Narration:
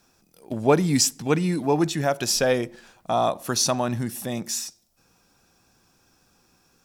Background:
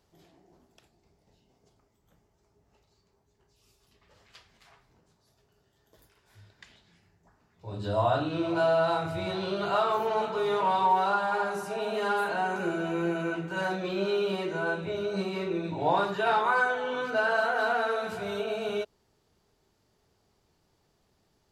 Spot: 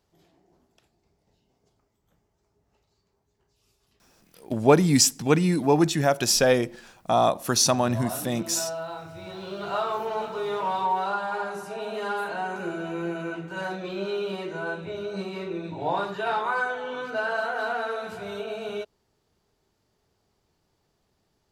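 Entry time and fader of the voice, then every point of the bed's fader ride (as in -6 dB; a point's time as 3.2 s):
4.00 s, +1.5 dB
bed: 3.9 s -2.5 dB
4.35 s -9 dB
9.13 s -9 dB
9.76 s -1.5 dB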